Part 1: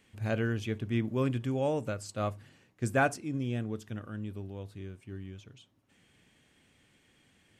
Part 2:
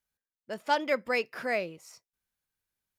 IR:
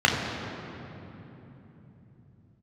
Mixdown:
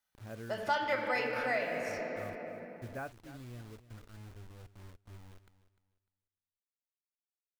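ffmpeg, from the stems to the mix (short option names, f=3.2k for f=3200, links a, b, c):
-filter_complex "[0:a]lowpass=1.9k,acrusher=bits=6:mix=0:aa=0.000001,volume=-14dB,asplit=2[a][b];[b]volume=-15.5dB[c];[1:a]lowshelf=f=460:g=-9.5,volume=2dB,asplit=2[d][e];[e]volume=-15dB[f];[2:a]atrim=start_sample=2205[g];[f][g]afir=irnorm=-1:irlink=0[h];[c]aecho=0:1:300|600|900|1200:1|0.24|0.0576|0.0138[i];[a][d][h][i]amix=inputs=4:normalize=0,asubboost=boost=7.5:cutoff=69,acompressor=threshold=-35dB:ratio=2"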